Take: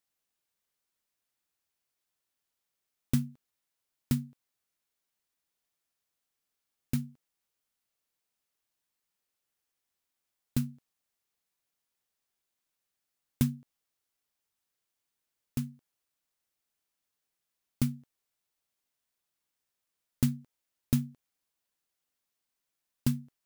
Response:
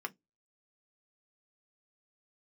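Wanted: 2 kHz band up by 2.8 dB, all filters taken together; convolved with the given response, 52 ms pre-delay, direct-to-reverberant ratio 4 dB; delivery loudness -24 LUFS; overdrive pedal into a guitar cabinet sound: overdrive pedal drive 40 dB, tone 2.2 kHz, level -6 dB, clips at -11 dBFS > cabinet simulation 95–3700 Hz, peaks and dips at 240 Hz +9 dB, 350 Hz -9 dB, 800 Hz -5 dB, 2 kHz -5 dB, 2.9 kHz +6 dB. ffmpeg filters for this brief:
-filter_complex "[0:a]equalizer=f=2000:t=o:g=4.5,asplit=2[s0][s1];[1:a]atrim=start_sample=2205,adelay=52[s2];[s1][s2]afir=irnorm=-1:irlink=0,volume=0.531[s3];[s0][s3]amix=inputs=2:normalize=0,asplit=2[s4][s5];[s5]highpass=f=720:p=1,volume=100,asoftclip=type=tanh:threshold=0.282[s6];[s4][s6]amix=inputs=2:normalize=0,lowpass=f=2200:p=1,volume=0.501,highpass=95,equalizer=f=240:t=q:w=4:g=9,equalizer=f=350:t=q:w=4:g=-9,equalizer=f=800:t=q:w=4:g=-5,equalizer=f=2000:t=q:w=4:g=-5,equalizer=f=2900:t=q:w=4:g=6,lowpass=f=3700:w=0.5412,lowpass=f=3700:w=1.3066,volume=0.473"

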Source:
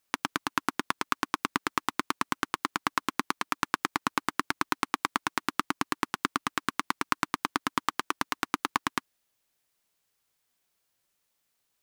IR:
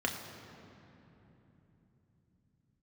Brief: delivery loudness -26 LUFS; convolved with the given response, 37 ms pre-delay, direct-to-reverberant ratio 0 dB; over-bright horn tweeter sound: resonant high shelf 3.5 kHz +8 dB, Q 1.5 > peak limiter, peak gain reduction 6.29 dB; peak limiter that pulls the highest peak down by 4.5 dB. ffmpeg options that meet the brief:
-filter_complex "[0:a]alimiter=limit=0.398:level=0:latency=1,asplit=2[s0][s1];[1:a]atrim=start_sample=2205,adelay=37[s2];[s1][s2]afir=irnorm=-1:irlink=0,volume=0.447[s3];[s0][s3]amix=inputs=2:normalize=0,highshelf=f=3500:t=q:w=1.5:g=8,volume=2.37,alimiter=limit=0.891:level=0:latency=1"

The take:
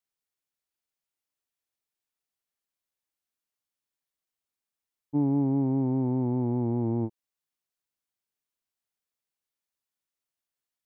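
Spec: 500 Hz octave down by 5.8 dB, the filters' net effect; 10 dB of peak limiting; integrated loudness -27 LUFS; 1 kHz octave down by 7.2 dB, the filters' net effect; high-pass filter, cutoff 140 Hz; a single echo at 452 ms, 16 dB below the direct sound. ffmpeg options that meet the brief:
-af "highpass=140,equalizer=f=500:t=o:g=-8,equalizer=f=1000:t=o:g=-6,alimiter=level_in=2.24:limit=0.0631:level=0:latency=1,volume=0.447,aecho=1:1:452:0.158,volume=3.55"

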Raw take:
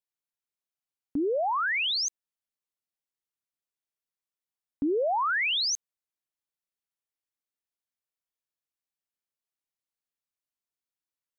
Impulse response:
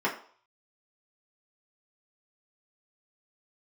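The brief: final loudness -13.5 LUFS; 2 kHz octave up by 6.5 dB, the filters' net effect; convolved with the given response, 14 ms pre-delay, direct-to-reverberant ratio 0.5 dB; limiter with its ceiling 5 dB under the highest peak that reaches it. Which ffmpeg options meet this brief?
-filter_complex "[0:a]equalizer=f=2000:t=o:g=8,alimiter=limit=0.0944:level=0:latency=1,asplit=2[s0][s1];[1:a]atrim=start_sample=2205,adelay=14[s2];[s1][s2]afir=irnorm=-1:irlink=0,volume=0.251[s3];[s0][s3]amix=inputs=2:normalize=0,volume=2.82"

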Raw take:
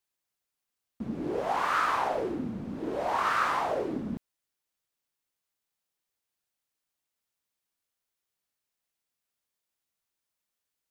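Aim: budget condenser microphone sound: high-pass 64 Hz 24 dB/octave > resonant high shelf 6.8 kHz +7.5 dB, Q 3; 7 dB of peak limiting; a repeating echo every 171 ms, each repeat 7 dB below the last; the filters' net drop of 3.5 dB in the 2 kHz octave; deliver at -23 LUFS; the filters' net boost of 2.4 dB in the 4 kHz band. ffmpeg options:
-af "equalizer=f=2000:t=o:g=-6,equalizer=f=4000:t=o:g=8.5,alimiter=limit=0.0841:level=0:latency=1,highpass=f=64:w=0.5412,highpass=f=64:w=1.3066,highshelf=f=6800:t=q:w=3:g=7.5,aecho=1:1:171|342|513|684|855:0.447|0.201|0.0905|0.0407|0.0183,volume=2.66"

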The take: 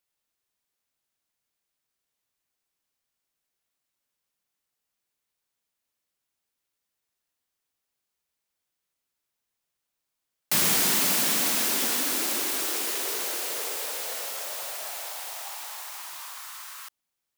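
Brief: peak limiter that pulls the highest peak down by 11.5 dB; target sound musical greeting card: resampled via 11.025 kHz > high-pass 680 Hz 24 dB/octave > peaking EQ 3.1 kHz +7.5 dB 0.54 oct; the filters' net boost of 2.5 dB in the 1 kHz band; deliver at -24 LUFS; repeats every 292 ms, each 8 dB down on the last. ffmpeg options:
-af "equalizer=f=1000:t=o:g=3.5,alimiter=limit=0.0891:level=0:latency=1,aecho=1:1:292|584|876|1168|1460:0.398|0.159|0.0637|0.0255|0.0102,aresample=11025,aresample=44100,highpass=f=680:w=0.5412,highpass=f=680:w=1.3066,equalizer=f=3100:t=o:w=0.54:g=7.5,volume=2.82"

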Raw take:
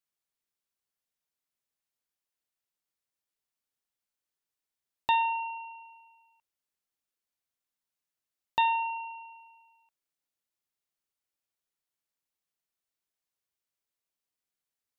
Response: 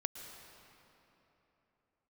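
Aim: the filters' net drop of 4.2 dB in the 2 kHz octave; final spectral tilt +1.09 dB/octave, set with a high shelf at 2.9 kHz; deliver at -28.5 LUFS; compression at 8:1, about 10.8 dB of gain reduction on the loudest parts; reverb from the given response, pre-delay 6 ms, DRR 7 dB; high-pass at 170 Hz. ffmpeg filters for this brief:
-filter_complex "[0:a]highpass=170,equalizer=f=2000:t=o:g=-3,highshelf=f=2900:g=-5.5,acompressor=threshold=0.0178:ratio=8,asplit=2[s0][s1];[1:a]atrim=start_sample=2205,adelay=6[s2];[s1][s2]afir=irnorm=-1:irlink=0,volume=0.447[s3];[s0][s3]amix=inputs=2:normalize=0,volume=6.68"

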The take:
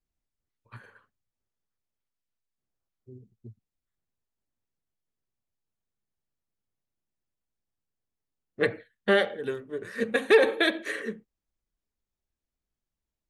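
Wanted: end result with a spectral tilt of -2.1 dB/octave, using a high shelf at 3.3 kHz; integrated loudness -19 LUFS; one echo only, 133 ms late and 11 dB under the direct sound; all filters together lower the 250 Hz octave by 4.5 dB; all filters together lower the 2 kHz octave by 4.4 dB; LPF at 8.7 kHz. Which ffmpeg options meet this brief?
-af "lowpass=8700,equalizer=f=250:t=o:g=-6.5,equalizer=f=2000:t=o:g=-4,highshelf=f=3300:g=-4.5,aecho=1:1:133:0.282,volume=2.99"

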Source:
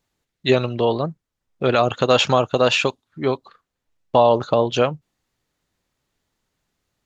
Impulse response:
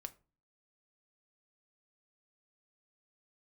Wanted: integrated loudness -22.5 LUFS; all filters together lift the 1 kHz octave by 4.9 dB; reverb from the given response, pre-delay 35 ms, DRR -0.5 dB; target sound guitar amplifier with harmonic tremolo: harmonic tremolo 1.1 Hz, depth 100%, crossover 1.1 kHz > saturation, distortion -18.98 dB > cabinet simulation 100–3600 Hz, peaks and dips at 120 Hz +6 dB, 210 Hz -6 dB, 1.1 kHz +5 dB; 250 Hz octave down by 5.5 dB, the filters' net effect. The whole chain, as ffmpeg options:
-filter_complex "[0:a]equalizer=f=250:t=o:g=-6.5,equalizer=f=1000:t=o:g=4,asplit=2[s0][s1];[1:a]atrim=start_sample=2205,adelay=35[s2];[s1][s2]afir=irnorm=-1:irlink=0,volume=1.78[s3];[s0][s3]amix=inputs=2:normalize=0,acrossover=split=1100[s4][s5];[s4]aeval=exprs='val(0)*(1-1/2+1/2*cos(2*PI*1.1*n/s))':c=same[s6];[s5]aeval=exprs='val(0)*(1-1/2-1/2*cos(2*PI*1.1*n/s))':c=same[s7];[s6][s7]amix=inputs=2:normalize=0,asoftclip=threshold=0.376,highpass=100,equalizer=f=120:t=q:w=4:g=6,equalizer=f=210:t=q:w=4:g=-6,equalizer=f=1100:t=q:w=4:g=5,lowpass=f=3600:w=0.5412,lowpass=f=3600:w=1.3066,volume=0.891"

